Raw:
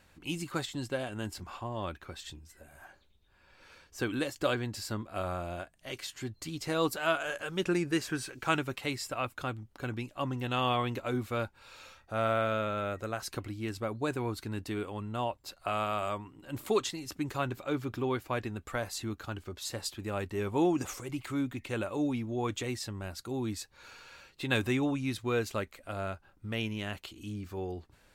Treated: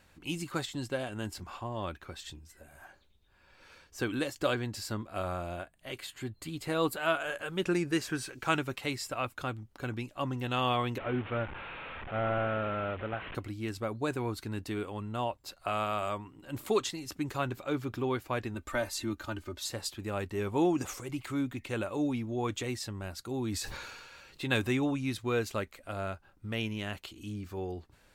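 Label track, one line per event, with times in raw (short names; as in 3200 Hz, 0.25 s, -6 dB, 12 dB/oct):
5.560000	7.640000	bell 5700 Hz -12 dB 0.41 oct
10.980000	13.350000	delta modulation 16 kbps, step -36 dBFS
18.540000	19.670000	comb 3.3 ms, depth 73%
23.340000	24.520000	sustainer at most 33 dB/s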